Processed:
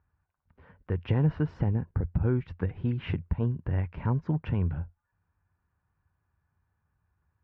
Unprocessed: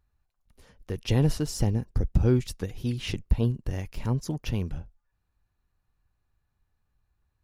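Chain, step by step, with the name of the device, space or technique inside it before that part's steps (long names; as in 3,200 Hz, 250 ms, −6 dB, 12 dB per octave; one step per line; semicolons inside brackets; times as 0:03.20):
bass amplifier (downward compressor 3 to 1, threshold −24 dBFS, peak gain reduction 7.5 dB; loudspeaker in its box 65–2,300 Hz, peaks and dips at 87 Hz +9 dB, 160 Hz +6 dB, 970 Hz +6 dB, 1,500 Hz +6 dB)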